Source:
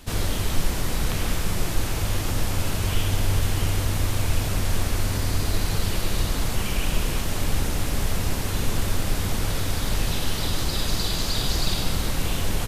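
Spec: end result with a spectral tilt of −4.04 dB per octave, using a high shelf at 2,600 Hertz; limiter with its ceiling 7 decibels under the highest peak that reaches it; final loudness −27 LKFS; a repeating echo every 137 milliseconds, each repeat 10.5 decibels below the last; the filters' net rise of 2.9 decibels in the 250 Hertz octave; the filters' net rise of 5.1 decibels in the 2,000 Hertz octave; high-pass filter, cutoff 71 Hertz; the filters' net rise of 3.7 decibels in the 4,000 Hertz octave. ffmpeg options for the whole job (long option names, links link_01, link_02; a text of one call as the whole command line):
ffmpeg -i in.wav -af "highpass=71,equalizer=frequency=250:width_type=o:gain=4,equalizer=frequency=2000:width_type=o:gain=7,highshelf=frequency=2600:gain=-6,equalizer=frequency=4000:width_type=o:gain=7.5,alimiter=limit=-17.5dB:level=0:latency=1,aecho=1:1:137|274|411:0.299|0.0896|0.0269,volume=-0.5dB" out.wav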